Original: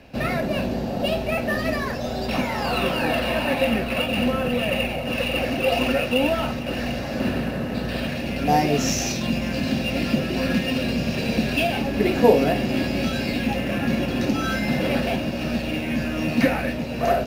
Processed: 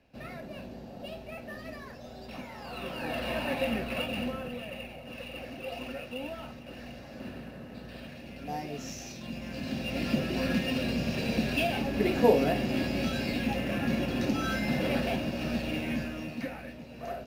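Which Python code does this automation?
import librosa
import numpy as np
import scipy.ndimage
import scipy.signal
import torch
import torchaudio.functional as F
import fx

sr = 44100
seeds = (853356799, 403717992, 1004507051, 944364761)

y = fx.gain(x, sr, db=fx.line((2.65, -18.0), (3.31, -9.0), (4.04, -9.0), (4.7, -17.5), (9.1, -17.5), (10.14, -6.5), (15.91, -6.5), (16.42, -17.5)))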